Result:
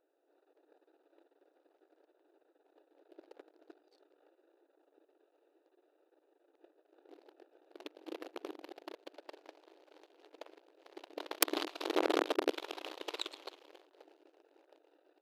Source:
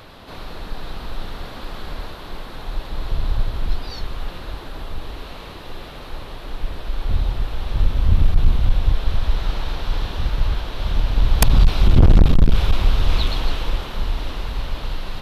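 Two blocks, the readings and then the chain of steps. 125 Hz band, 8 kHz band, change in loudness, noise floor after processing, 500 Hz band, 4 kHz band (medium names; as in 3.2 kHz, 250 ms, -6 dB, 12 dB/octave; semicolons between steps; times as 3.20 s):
under -40 dB, -9.0 dB, -15.0 dB, -77 dBFS, -8.0 dB, -14.0 dB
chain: local Wiener filter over 41 samples; Chebyshev shaper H 2 -12 dB, 3 -9 dB, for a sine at -1.5 dBFS; brick-wall FIR high-pass 290 Hz; trim -2.5 dB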